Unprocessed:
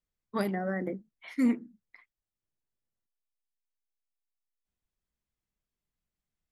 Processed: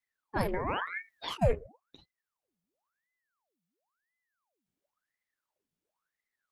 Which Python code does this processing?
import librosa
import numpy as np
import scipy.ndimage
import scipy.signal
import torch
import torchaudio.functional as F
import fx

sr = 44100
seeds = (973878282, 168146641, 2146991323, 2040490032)

y = fx.over_compress(x, sr, threshold_db=-42.0, ratio=-1.0, at=(0.84, 1.41), fade=0.02)
y = fx.ring_lfo(y, sr, carrier_hz=1100.0, swing_pct=85, hz=0.96)
y = F.gain(torch.from_numpy(y), 2.5).numpy()